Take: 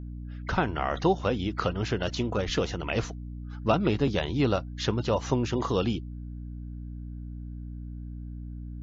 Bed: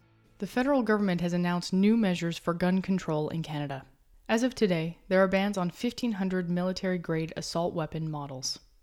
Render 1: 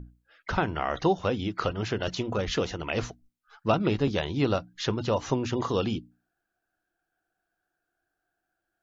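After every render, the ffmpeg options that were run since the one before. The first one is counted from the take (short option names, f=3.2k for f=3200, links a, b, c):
-af "bandreject=f=60:t=h:w=6,bandreject=f=120:t=h:w=6,bandreject=f=180:t=h:w=6,bandreject=f=240:t=h:w=6,bandreject=f=300:t=h:w=6"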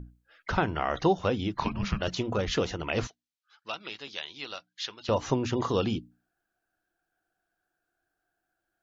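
-filter_complex "[0:a]asplit=3[a][b][c];[a]afade=t=out:st=1.54:d=0.02[d];[b]afreqshift=-310,afade=t=in:st=1.54:d=0.02,afade=t=out:st=2:d=0.02[e];[c]afade=t=in:st=2:d=0.02[f];[d][e][f]amix=inputs=3:normalize=0,asettb=1/sr,asplit=3[g][h][i];[g]atrim=end=3.074[j];[h]atrim=start=3.07:end=5.09,asetpts=PTS-STARTPTS,afade=t=in:d=0.004:c=qsin,afade=t=out:st=2.016:d=0.004:c=qsin,bandpass=f=3.9k:t=q:w=1[k];[i]atrim=start=5.086[l];[j][k]acrossfade=d=0.004:c1=hsin:c2=qsin[m];[m][l]acrossfade=d=0.004:c1=qsin:c2=hsin"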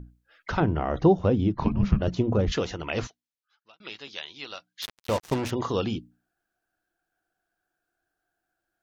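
-filter_complex "[0:a]asettb=1/sr,asplit=3[a][b][c];[a]atrim=end=0.604[d];[b]atrim=start=0.6:end=2.52,asetpts=PTS-STARTPTS,afade=t=in:d=0.004:c=qsin,afade=t=out:st=1.916:d=0.004:c=qsin,tiltshelf=f=810:g=9[e];[c]atrim=start=2.516[f];[d][e]acrossfade=d=0.004:c1=hsin:c2=qsin[g];[g][f]acrossfade=d=0.004:c1=qsin:c2=hsin,asettb=1/sr,asplit=3[h][i][j];[h]atrim=end=4.824[k];[i]atrim=start=4.82:end=5.51,asetpts=PTS-STARTPTS,afade=t=in:d=0.004:c=qsin,afade=t=out:st=0.686:d=0.004:c=qsin,acrusher=bits=4:mix=0:aa=0.5[l];[j]atrim=start=5.506[m];[k][l]acrossfade=d=0.004:c1=hsin:c2=qsin[n];[n][m]acrossfade=d=0.004:c1=qsin:c2=hsin,asplit=2[o][p];[o]atrim=end=3.8,asetpts=PTS-STARTPTS,afade=t=out:st=3.03:d=0.77[q];[p]atrim=start=3.8,asetpts=PTS-STARTPTS,afade=t=in:d=0.004:c=hsin[r];[q][r]concat=n=2:v=0:a=1"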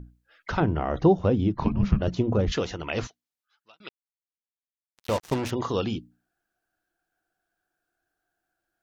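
-filter_complex "[0:a]asplit=3[a][b][c];[a]atrim=end=3.89,asetpts=PTS-STARTPTS,afade=t=out:st=3.886:d=0.004:c=hsin[d];[b]atrim=start=3.89:end=4.97,asetpts=PTS-STARTPTS,volume=0[e];[c]atrim=start=4.97,asetpts=PTS-STARTPTS,afade=t=in:d=0.004:c=hsin[f];[d][e][f]concat=n=3:v=0:a=1"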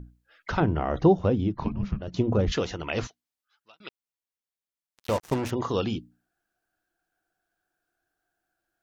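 -filter_complex "[0:a]asettb=1/sr,asplit=3[a][b][c];[a]atrim=end=5.114[d];[b]atrim=start=5.11:end=5.71,asetpts=PTS-STARTPTS,afade=t=in:d=0.004:c=qsin,afade=t=out:st=0.596:d=0.004:c=qsin,equalizer=f=3.9k:w=0.9:g=-4[e];[c]atrim=start=5.706[f];[d][e]acrossfade=d=0.004:c1=hsin:c2=qsin[g];[g][f]acrossfade=d=0.004:c1=qsin:c2=hsin,asplit=2[h][i];[h]atrim=end=2.14,asetpts=PTS-STARTPTS,afade=t=out:st=1.13:d=1.01:silence=0.251189[j];[i]atrim=start=2.14,asetpts=PTS-STARTPTS,afade=t=in:d=0.004:c=hsin:silence=0.251189[k];[j][k]concat=n=2:v=0:a=1"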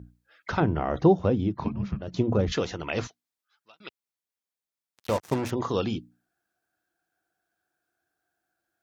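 -af "highpass=72,bandreject=f=2.9k:w=22"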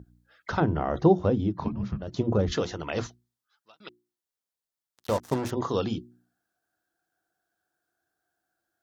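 -af "equalizer=f=2.4k:w=2.8:g=-6,bandreject=f=60:t=h:w=6,bandreject=f=120:t=h:w=6,bandreject=f=180:t=h:w=6,bandreject=f=240:t=h:w=6,bandreject=f=300:t=h:w=6,bandreject=f=360:t=h:w=6"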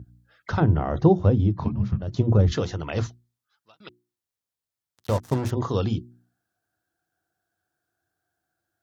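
-af "equalizer=f=100:w=1.1:g=11"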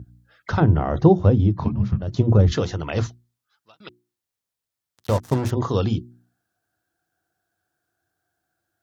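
-af "volume=3dB"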